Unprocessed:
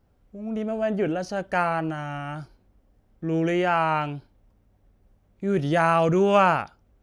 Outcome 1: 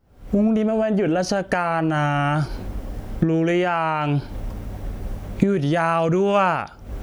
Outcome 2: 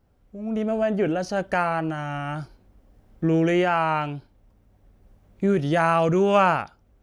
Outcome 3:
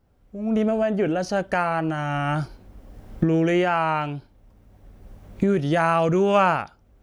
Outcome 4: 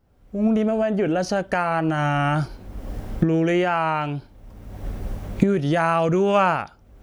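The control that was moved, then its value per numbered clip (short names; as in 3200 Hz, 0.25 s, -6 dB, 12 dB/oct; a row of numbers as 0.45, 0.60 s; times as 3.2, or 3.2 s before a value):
recorder AGC, rising by: 88, 5, 14, 34 dB/s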